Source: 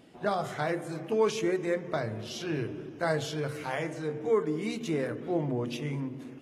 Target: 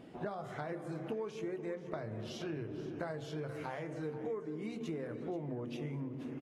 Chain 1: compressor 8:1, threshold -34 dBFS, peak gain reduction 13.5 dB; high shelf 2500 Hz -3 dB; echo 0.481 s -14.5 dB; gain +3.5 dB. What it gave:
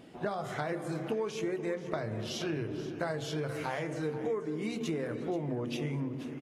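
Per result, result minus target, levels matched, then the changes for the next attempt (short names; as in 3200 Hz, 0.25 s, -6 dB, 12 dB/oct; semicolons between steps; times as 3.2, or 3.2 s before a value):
compressor: peak gain reduction -5.5 dB; 4000 Hz band +4.0 dB
change: compressor 8:1, threshold -40.5 dBFS, peak gain reduction 19.5 dB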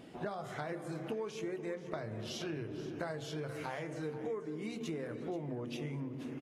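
4000 Hz band +4.5 dB
change: high shelf 2500 Hz -10.5 dB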